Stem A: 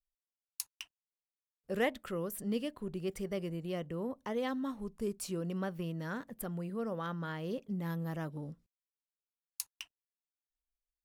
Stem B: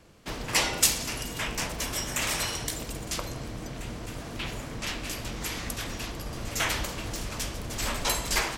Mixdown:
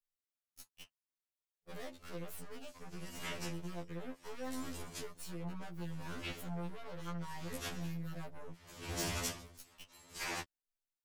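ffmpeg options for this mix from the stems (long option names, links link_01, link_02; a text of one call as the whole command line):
ffmpeg -i stem1.wav -i stem2.wav -filter_complex "[0:a]acompressor=threshold=-38dB:ratio=6,aeval=exprs='0.0211*(cos(1*acos(clip(val(0)/0.0211,-1,1)))-cos(1*PI/2))+0.00596*(cos(6*acos(clip(val(0)/0.0211,-1,1)))-cos(6*PI/2))':channel_layout=same,asoftclip=type=hard:threshold=-38dB,volume=-1.5dB,asplit=2[link_01][link_02];[1:a]aeval=exprs='val(0)*pow(10,-36*(0.5-0.5*cos(2*PI*0.69*n/s))/20)':channel_layout=same,adelay=1850,volume=2dB[link_03];[link_02]apad=whole_len=459817[link_04];[link_03][link_04]sidechaincompress=threshold=-53dB:ratio=12:attack=49:release=224[link_05];[link_01][link_05]amix=inputs=2:normalize=0,afftfilt=real='re*2*eq(mod(b,4),0)':imag='im*2*eq(mod(b,4),0)':win_size=2048:overlap=0.75" out.wav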